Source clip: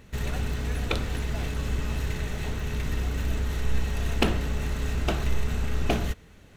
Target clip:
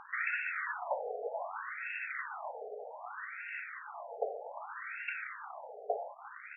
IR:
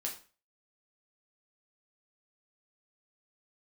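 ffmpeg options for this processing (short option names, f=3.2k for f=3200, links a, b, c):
-filter_complex "[0:a]asubboost=boost=3:cutoff=220,acompressor=threshold=-25dB:ratio=5,acrusher=bits=7:mix=0:aa=0.000001,aecho=1:1:350:0.251,asplit=2[a][b];[1:a]atrim=start_sample=2205[c];[b][c]afir=irnorm=-1:irlink=0,volume=-6dB[d];[a][d]amix=inputs=2:normalize=0,afftfilt=real='re*between(b*sr/1024,570*pow(2000/570,0.5+0.5*sin(2*PI*0.64*pts/sr))/1.41,570*pow(2000/570,0.5+0.5*sin(2*PI*0.64*pts/sr))*1.41)':imag='im*between(b*sr/1024,570*pow(2000/570,0.5+0.5*sin(2*PI*0.64*pts/sr))/1.41,570*pow(2000/570,0.5+0.5*sin(2*PI*0.64*pts/sr))*1.41)':win_size=1024:overlap=0.75,volume=8dB"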